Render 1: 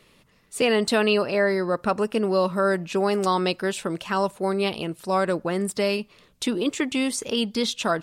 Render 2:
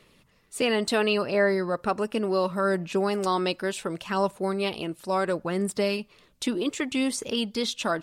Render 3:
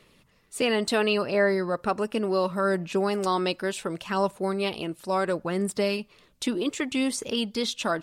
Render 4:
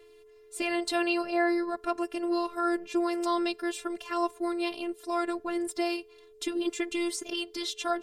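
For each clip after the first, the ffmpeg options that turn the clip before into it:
-af "aphaser=in_gain=1:out_gain=1:delay=3.5:decay=0.24:speed=0.7:type=sinusoidal,volume=-3dB"
-af anull
-af "afftfilt=real='hypot(re,im)*cos(PI*b)':imag='0':win_size=512:overlap=0.75,aeval=exprs='val(0)+0.00224*sin(2*PI*430*n/s)':c=same"

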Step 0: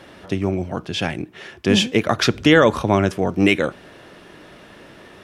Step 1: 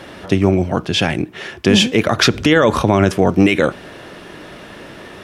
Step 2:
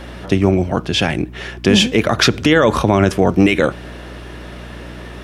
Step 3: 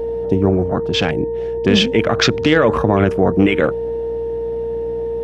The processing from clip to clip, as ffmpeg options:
-af "alimiter=level_in=9dB:limit=-1dB:release=50:level=0:latency=1,volume=-1dB"
-af "aeval=exprs='val(0)+0.0224*(sin(2*PI*60*n/s)+sin(2*PI*2*60*n/s)/2+sin(2*PI*3*60*n/s)/3+sin(2*PI*4*60*n/s)/4+sin(2*PI*5*60*n/s)/5)':c=same"
-af "aeval=exprs='val(0)+0.126*sin(2*PI*460*n/s)':c=same,afwtdn=0.0631,volume=-1.5dB"

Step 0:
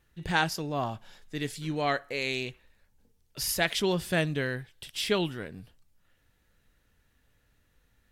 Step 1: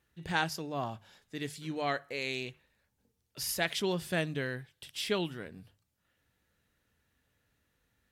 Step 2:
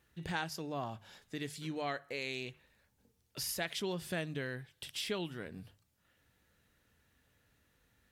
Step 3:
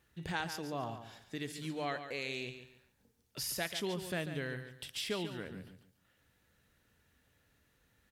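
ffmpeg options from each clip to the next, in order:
-af "highpass=64,bandreject=f=50:t=h:w=6,bandreject=f=100:t=h:w=6,bandreject=f=150:t=h:w=6,volume=-4.5dB"
-af "acompressor=threshold=-45dB:ratio=2,volume=3.5dB"
-af "aecho=1:1:142|284|426:0.316|0.0854|0.0231"

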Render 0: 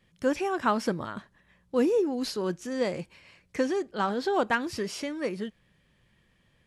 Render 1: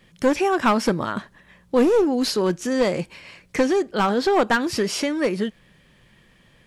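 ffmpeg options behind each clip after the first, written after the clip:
-filter_complex "[0:a]equalizer=f=79:t=o:w=0.97:g=-6,asplit=2[a][b];[b]acompressor=threshold=-33dB:ratio=6,volume=-0.5dB[c];[a][c]amix=inputs=2:normalize=0,aeval=exprs='clip(val(0),-1,0.075)':c=same,volume=6dB"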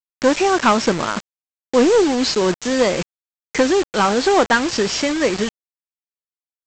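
-af "lowshelf=f=140:g=-9,aeval=exprs='val(0)+0.00224*(sin(2*PI*50*n/s)+sin(2*PI*2*50*n/s)/2+sin(2*PI*3*50*n/s)/3+sin(2*PI*4*50*n/s)/4+sin(2*PI*5*50*n/s)/5)':c=same,aresample=16000,acrusher=bits=4:mix=0:aa=0.000001,aresample=44100,volume=4.5dB"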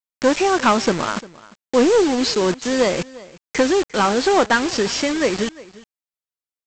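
-af "aecho=1:1:350:0.0944,volume=-1dB"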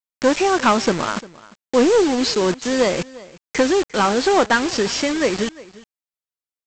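-af anull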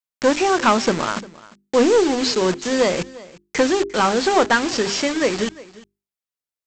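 -af "bandreject=f=50:t=h:w=6,bandreject=f=100:t=h:w=6,bandreject=f=150:t=h:w=6,bandreject=f=200:t=h:w=6,bandreject=f=250:t=h:w=6,bandreject=f=300:t=h:w=6,bandreject=f=350:t=h:w=6,bandreject=f=400:t=h:w=6"

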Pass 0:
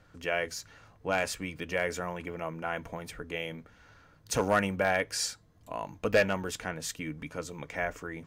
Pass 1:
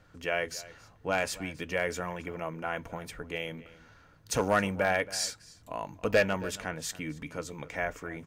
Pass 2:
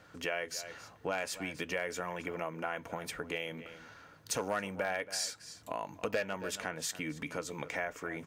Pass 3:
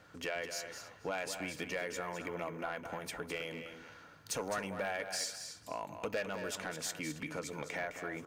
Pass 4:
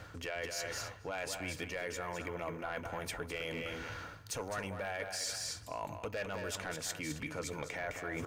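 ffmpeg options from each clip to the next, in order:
-filter_complex "[0:a]asplit=2[a][b];[b]adelay=274.1,volume=-18dB,highshelf=f=4k:g=-6.17[c];[a][c]amix=inputs=2:normalize=0"
-af "highpass=f=250:p=1,acompressor=threshold=-40dB:ratio=3,volume=5dB"
-af "asoftclip=type=tanh:threshold=-25.5dB,aecho=1:1:210:0.355,volume=-1.5dB"
-af "lowshelf=f=130:t=q:w=1.5:g=8,areverse,acompressor=threshold=-47dB:ratio=6,areverse,volume=10dB"

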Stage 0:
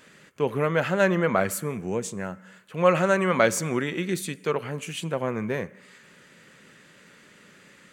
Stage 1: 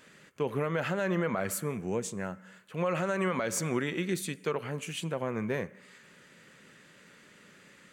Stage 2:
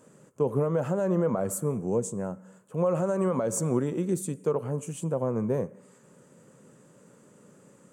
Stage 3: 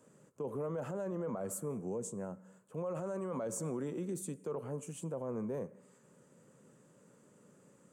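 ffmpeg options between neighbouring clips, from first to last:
-af "alimiter=limit=-16dB:level=0:latency=1:release=88,volume=-3.5dB"
-af "equalizer=f=125:t=o:w=1:g=11,equalizer=f=250:t=o:w=1:g=6,equalizer=f=500:t=o:w=1:g=9,equalizer=f=1k:t=o:w=1:g=7,equalizer=f=2k:t=o:w=1:g=-11,equalizer=f=4k:t=o:w=1:g=-10,equalizer=f=8k:t=o:w=1:g=11,volume=-5dB"
-filter_complex "[0:a]acrossover=split=160|2100[a][b][c];[a]acompressor=threshold=-44dB:ratio=6[d];[d][b][c]amix=inputs=3:normalize=0,alimiter=limit=-23.5dB:level=0:latency=1:release=17,volume=-7.5dB"

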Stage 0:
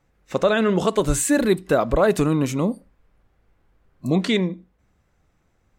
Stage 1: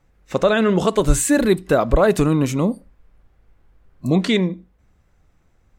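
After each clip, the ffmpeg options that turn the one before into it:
-af "lowshelf=f=70:g=8,volume=2dB"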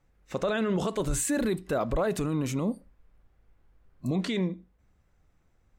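-af "alimiter=limit=-12dB:level=0:latency=1:release=18,volume=-7.5dB"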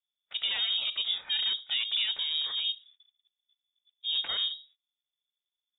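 -af "aeval=exprs='val(0)*sin(2*PI*330*n/s)':c=same,lowpass=f=3.2k:t=q:w=0.5098,lowpass=f=3.2k:t=q:w=0.6013,lowpass=f=3.2k:t=q:w=0.9,lowpass=f=3.2k:t=q:w=2.563,afreqshift=-3800,agate=range=-23dB:threshold=-57dB:ratio=16:detection=peak"

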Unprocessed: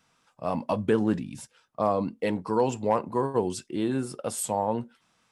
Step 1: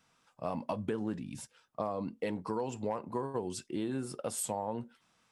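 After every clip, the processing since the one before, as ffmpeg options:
-af "acompressor=threshold=-28dB:ratio=6,volume=-3dB"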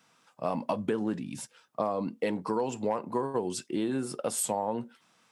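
-af "highpass=150,volume=5.5dB"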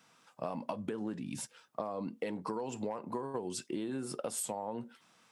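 -af "acompressor=threshold=-34dB:ratio=6"

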